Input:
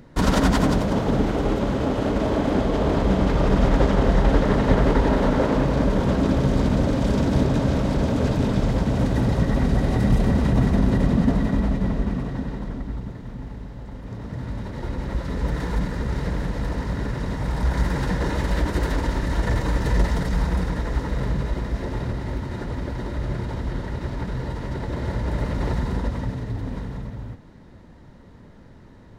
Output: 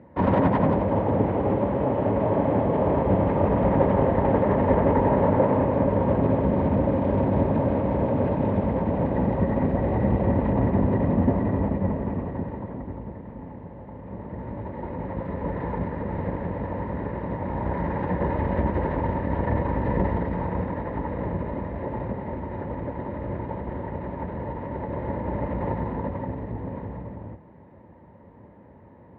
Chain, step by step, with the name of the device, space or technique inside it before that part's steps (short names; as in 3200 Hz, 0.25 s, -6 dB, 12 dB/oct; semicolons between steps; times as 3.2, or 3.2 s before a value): 18.19–20.34 bell 79 Hz +11 dB 0.51 oct; sub-octave bass pedal (octaver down 1 oct, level +2 dB; speaker cabinet 72–2200 Hz, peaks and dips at 77 Hz -7 dB, 130 Hz -7 dB, 550 Hz +7 dB, 910 Hz +8 dB, 1400 Hz -8 dB); gain -3 dB